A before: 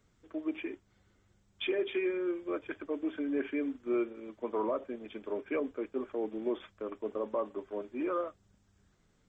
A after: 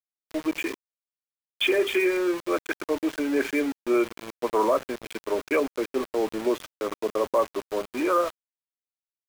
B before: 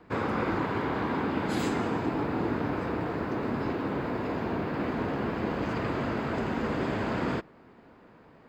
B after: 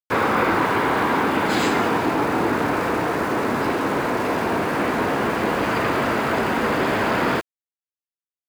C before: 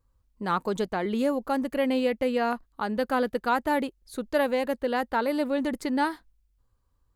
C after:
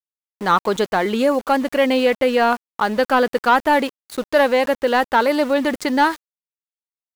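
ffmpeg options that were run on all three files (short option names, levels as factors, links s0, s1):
-filter_complex "[0:a]acontrast=35,asplit=2[s0][s1];[s1]highpass=f=720:p=1,volume=3.55,asoftclip=type=tanh:threshold=0.501[s2];[s0][s2]amix=inputs=2:normalize=0,lowpass=f=5300:p=1,volume=0.501,aeval=exprs='val(0)*gte(abs(val(0)),0.02)':c=same,volume=1.26"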